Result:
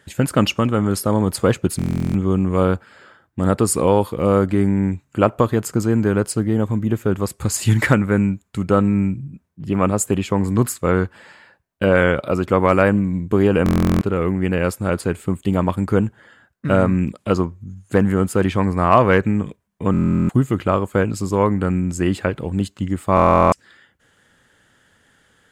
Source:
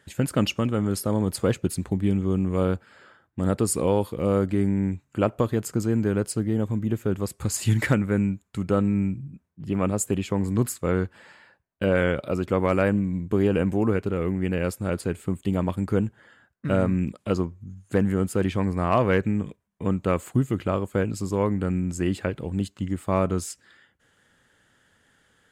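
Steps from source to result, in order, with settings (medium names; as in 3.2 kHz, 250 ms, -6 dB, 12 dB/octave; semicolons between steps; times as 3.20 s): dynamic bell 1.1 kHz, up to +5 dB, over -40 dBFS, Q 1.1; buffer glitch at 1.77/13.64/19.92/23.15 s, samples 1024, times 15; trim +5.5 dB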